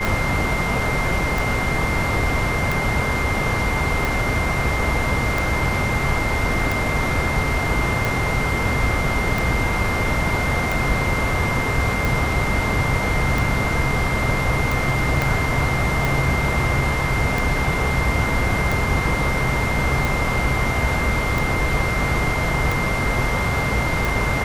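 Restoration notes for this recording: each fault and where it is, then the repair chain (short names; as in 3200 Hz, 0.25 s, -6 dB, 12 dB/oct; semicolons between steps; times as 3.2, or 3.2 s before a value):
tick 45 rpm
tone 2100 Hz -25 dBFS
15.22 pop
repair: de-click; notch 2100 Hz, Q 30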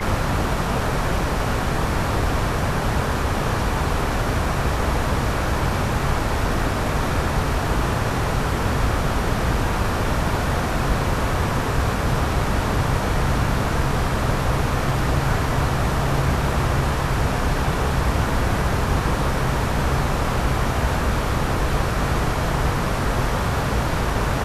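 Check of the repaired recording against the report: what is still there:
15.22 pop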